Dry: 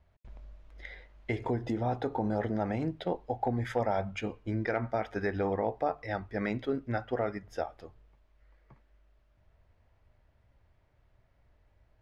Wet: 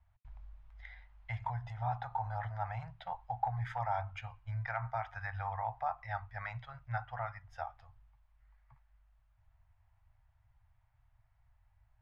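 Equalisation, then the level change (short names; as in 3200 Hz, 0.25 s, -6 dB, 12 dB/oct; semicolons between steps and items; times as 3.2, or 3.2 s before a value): LPF 1700 Hz 6 dB/oct; dynamic EQ 1100 Hz, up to +5 dB, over -44 dBFS, Q 1.1; elliptic band-stop 120–790 Hz, stop band 60 dB; -2.0 dB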